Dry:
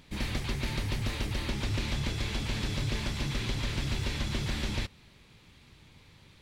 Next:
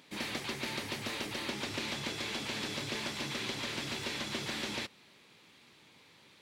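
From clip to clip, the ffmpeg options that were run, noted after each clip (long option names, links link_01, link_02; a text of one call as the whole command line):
ffmpeg -i in.wav -af "highpass=270" out.wav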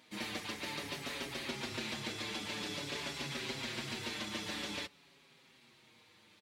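ffmpeg -i in.wav -filter_complex "[0:a]asplit=2[link_01][link_02];[link_02]adelay=6,afreqshift=-0.5[link_03];[link_01][link_03]amix=inputs=2:normalize=1" out.wav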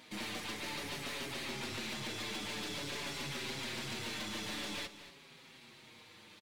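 ffmpeg -i in.wav -filter_complex "[0:a]asplit=2[link_01][link_02];[link_02]acompressor=threshold=-48dB:ratio=6,volume=-2dB[link_03];[link_01][link_03]amix=inputs=2:normalize=0,aeval=exprs='(tanh(89.1*val(0)+0.3)-tanh(0.3))/89.1':channel_layout=same,aecho=1:1:234:0.2,volume=2dB" out.wav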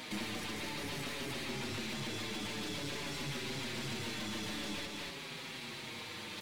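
ffmpeg -i in.wav -filter_complex "[0:a]areverse,acompressor=mode=upward:threshold=-52dB:ratio=2.5,areverse,alimiter=level_in=18dB:limit=-24dB:level=0:latency=1:release=19,volume=-18dB,acrossover=split=410[link_01][link_02];[link_02]acompressor=threshold=-51dB:ratio=6[link_03];[link_01][link_03]amix=inputs=2:normalize=0,volume=11.5dB" out.wav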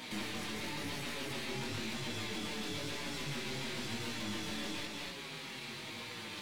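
ffmpeg -i in.wav -af "flanger=delay=16.5:depth=6.6:speed=0.98,volume=3dB" out.wav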